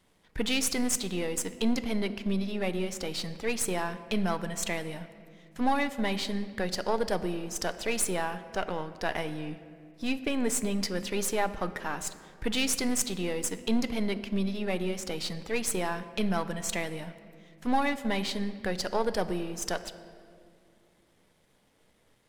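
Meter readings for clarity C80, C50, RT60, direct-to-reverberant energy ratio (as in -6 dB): 14.0 dB, 13.5 dB, 2.3 s, 11.5 dB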